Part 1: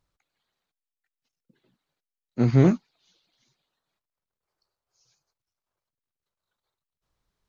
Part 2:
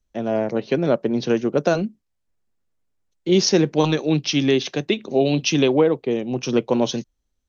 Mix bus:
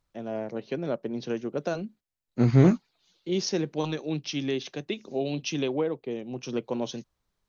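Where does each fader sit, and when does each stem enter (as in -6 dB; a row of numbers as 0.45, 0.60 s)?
-0.5, -11.0 dB; 0.00, 0.00 s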